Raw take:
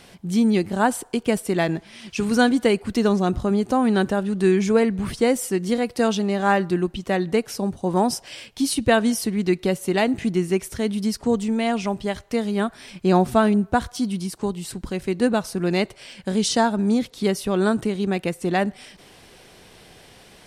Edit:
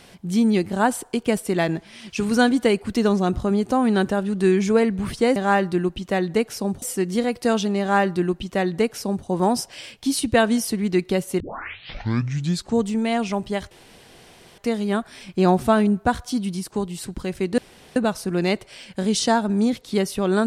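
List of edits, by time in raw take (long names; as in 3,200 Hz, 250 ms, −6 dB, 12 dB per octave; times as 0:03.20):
0:06.34–0:07.80: duplicate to 0:05.36
0:09.94: tape start 1.39 s
0:12.25: splice in room tone 0.87 s
0:15.25: splice in room tone 0.38 s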